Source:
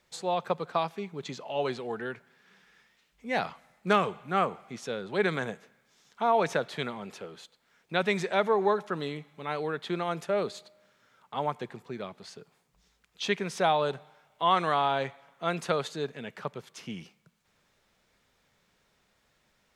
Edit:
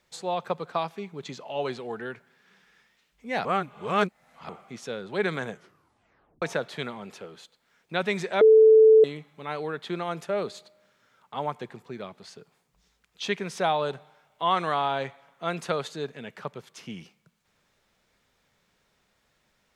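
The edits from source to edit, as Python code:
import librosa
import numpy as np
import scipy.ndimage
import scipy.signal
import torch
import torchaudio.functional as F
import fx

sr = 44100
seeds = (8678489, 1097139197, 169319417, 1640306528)

y = fx.edit(x, sr, fx.reverse_span(start_s=3.45, length_s=1.04),
    fx.tape_stop(start_s=5.51, length_s=0.91),
    fx.bleep(start_s=8.41, length_s=0.63, hz=439.0, db=-11.0), tone=tone)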